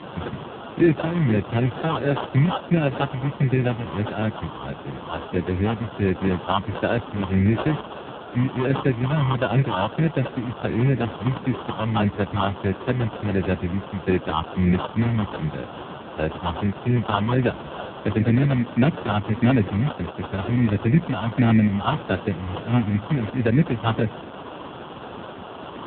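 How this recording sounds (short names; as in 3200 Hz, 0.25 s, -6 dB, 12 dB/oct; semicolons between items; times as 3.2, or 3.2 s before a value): a quantiser's noise floor 6-bit, dither triangular; phasing stages 6, 1.5 Hz, lowest notch 390–1500 Hz; aliases and images of a low sample rate 2100 Hz, jitter 0%; AMR-NB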